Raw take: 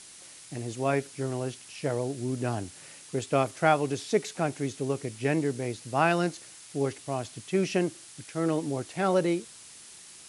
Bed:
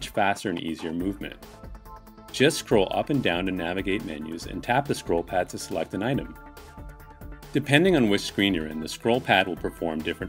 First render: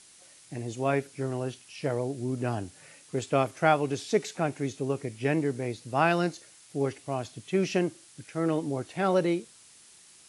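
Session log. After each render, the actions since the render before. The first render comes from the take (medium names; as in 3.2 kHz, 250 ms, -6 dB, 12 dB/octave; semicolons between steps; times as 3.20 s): noise print and reduce 6 dB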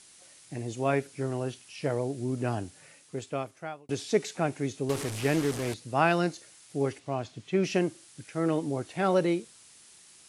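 2.59–3.89 s: fade out; 4.89–5.74 s: one-bit delta coder 64 kbps, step -29 dBFS; 6.99–7.64 s: distance through air 78 m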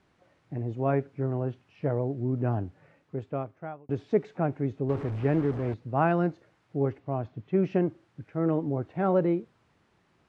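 low-pass 1.3 kHz 12 dB/octave; peaking EQ 86 Hz +6 dB 2.1 oct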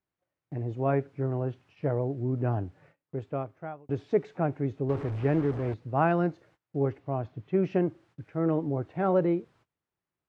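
gate -57 dBFS, range -23 dB; peaking EQ 220 Hz -5.5 dB 0.3 oct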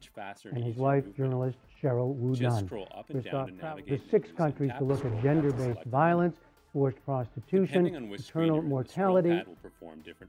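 add bed -18.5 dB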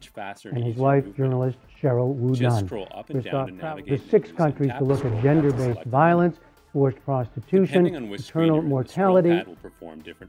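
trim +7 dB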